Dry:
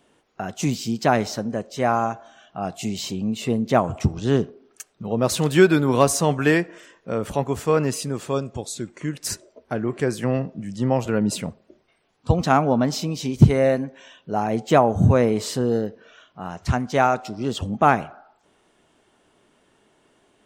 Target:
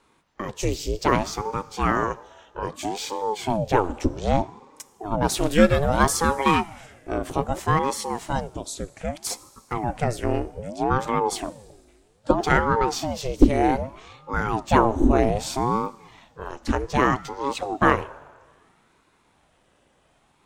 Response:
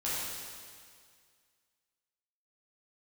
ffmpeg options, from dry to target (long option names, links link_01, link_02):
-filter_complex "[0:a]asplit=2[link_01][link_02];[1:a]atrim=start_sample=2205,highshelf=frequency=6600:gain=8.5[link_03];[link_02][link_03]afir=irnorm=-1:irlink=0,volume=-27dB[link_04];[link_01][link_04]amix=inputs=2:normalize=0,aeval=exprs='val(0)*sin(2*PI*420*n/s+420*0.65/0.63*sin(2*PI*0.63*n/s))':channel_layout=same,volume=1dB"